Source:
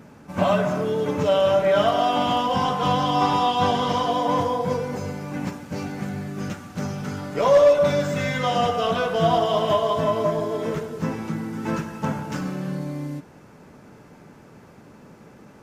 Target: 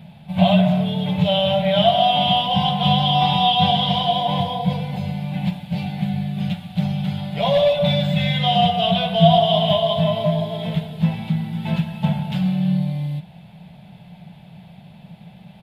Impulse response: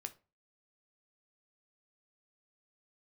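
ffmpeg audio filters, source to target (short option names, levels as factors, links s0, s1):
-af "firequalizer=gain_entry='entry(100,0);entry(180,10);entry(260,-17);entry(460,-15);entry(690,4);entry(1200,-16);entry(2200,0);entry(3500,11);entry(5900,-19);entry(10000,-4)':delay=0.05:min_phase=1,volume=1.41"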